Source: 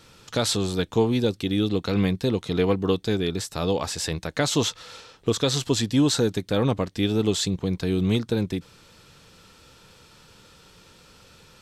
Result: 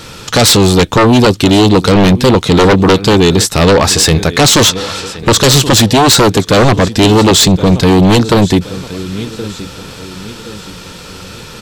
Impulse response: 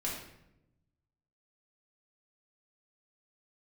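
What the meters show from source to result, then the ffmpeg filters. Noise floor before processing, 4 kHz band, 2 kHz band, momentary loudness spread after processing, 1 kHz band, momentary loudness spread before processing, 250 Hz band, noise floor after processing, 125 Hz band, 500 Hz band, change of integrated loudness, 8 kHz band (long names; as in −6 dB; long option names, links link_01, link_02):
−53 dBFS, +18.0 dB, +19.0 dB, 18 LU, +21.5 dB, 6 LU, +15.0 dB, −31 dBFS, +16.0 dB, +15.5 dB, +16.5 dB, +19.0 dB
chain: -af "aecho=1:1:1073|2146|3219:0.1|0.04|0.016,aeval=exprs='0.335*sin(PI/2*3.55*val(0)/0.335)':channel_layout=same,volume=6.5dB"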